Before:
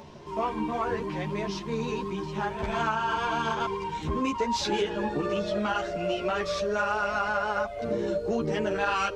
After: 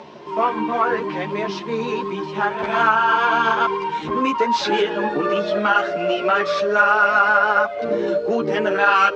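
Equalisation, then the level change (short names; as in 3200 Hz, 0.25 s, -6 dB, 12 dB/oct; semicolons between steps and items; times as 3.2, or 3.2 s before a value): dynamic EQ 1400 Hz, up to +6 dB, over -42 dBFS, Q 2.2; BPF 250–4200 Hz; +8.5 dB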